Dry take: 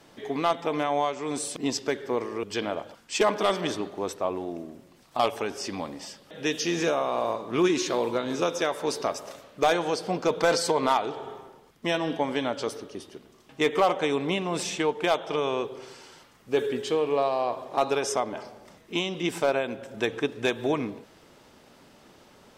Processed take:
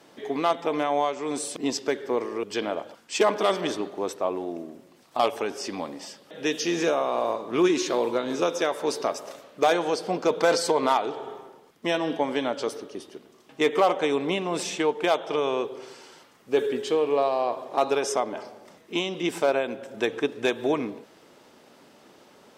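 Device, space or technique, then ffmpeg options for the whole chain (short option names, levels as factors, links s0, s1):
filter by subtraction: -filter_complex "[0:a]asplit=2[s0][s1];[s1]lowpass=340,volume=-1[s2];[s0][s2]amix=inputs=2:normalize=0"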